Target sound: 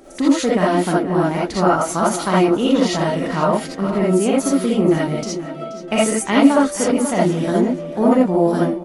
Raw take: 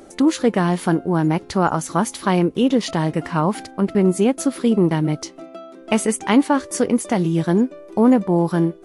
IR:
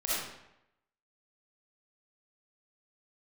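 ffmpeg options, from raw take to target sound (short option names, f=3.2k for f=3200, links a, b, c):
-filter_complex "[0:a]asettb=1/sr,asplit=3[a][b][c];[a]atrim=end=4.814[d];[b]atrim=start=4.81:end=5.98,asetpts=PTS-STARTPTS,afade=t=in:d=0.004:c=qsin,afade=t=out:st=1.166:d=0.004:c=qsin,bandreject=f=1k:w=6.1[e];[c]atrim=start=5.976[f];[d][e]acrossfade=d=0.004:c1=hsin:c2=qsin[g];[g][f]acrossfade=d=0.004:c1=qsin:c2=hsin,asplit=2[h][i];[i]adelay=479,lowpass=f=4.7k:p=1,volume=-12dB,asplit=2[j][k];[k]adelay=479,lowpass=f=4.7k:p=1,volume=0.35,asplit=2[l][m];[m]adelay=479,lowpass=f=4.7k:p=1,volume=0.35,asplit=2[n][o];[o]adelay=479,lowpass=f=4.7k:p=1,volume=0.35[p];[h][j][l][n][p]amix=inputs=5:normalize=0[q];[1:a]atrim=start_sample=2205,atrim=end_sample=3969[r];[q][r]afir=irnorm=-1:irlink=0,volume=-1.5dB"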